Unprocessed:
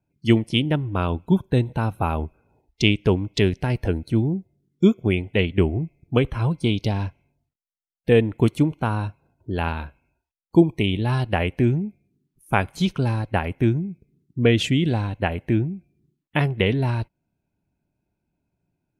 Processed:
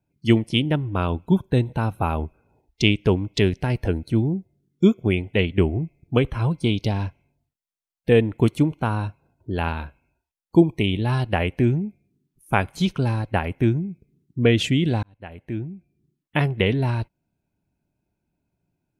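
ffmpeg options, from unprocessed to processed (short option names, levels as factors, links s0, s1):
-filter_complex "[0:a]asplit=2[s0][s1];[s0]atrim=end=15.03,asetpts=PTS-STARTPTS,afade=t=out:st=15.026:d=0.004:c=hsin[s2];[s1]atrim=start=15.03,asetpts=PTS-STARTPTS,afade=t=in:d=1.35[s3];[s2][s3]concat=n=2:v=0:a=1"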